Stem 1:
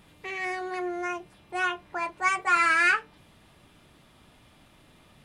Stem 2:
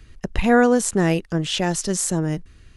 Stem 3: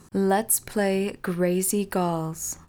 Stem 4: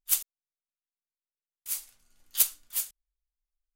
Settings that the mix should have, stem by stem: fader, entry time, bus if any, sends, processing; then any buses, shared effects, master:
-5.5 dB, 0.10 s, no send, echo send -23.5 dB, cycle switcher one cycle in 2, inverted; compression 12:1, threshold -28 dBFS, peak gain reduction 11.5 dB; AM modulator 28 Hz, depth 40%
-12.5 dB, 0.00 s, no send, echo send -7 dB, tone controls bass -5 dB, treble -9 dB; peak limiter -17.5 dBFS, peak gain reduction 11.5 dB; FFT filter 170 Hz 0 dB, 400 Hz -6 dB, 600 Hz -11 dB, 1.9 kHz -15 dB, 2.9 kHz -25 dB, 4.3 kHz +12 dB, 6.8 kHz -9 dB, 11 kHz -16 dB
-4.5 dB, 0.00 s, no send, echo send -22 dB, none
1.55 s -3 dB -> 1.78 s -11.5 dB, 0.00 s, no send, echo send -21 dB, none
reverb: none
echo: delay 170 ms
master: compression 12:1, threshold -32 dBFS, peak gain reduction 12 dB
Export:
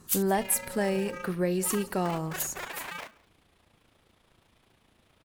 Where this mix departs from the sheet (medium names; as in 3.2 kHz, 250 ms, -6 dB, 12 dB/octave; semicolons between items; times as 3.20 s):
stem 2 -12.5 dB -> -22.5 dB; master: missing compression 12:1, threshold -32 dBFS, peak gain reduction 12 dB